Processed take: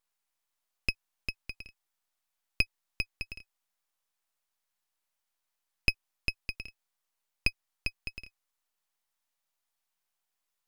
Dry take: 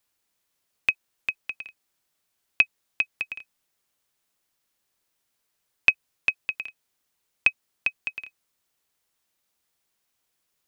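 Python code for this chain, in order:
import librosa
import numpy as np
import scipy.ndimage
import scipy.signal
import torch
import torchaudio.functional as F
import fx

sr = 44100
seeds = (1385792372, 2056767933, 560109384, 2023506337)

y = fx.highpass_res(x, sr, hz=800.0, q=1.5)
y = np.maximum(y, 0.0)
y = fx.wow_flutter(y, sr, seeds[0], rate_hz=2.1, depth_cents=17.0)
y = F.gain(torch.from_numpy(y), -4.5).numpy()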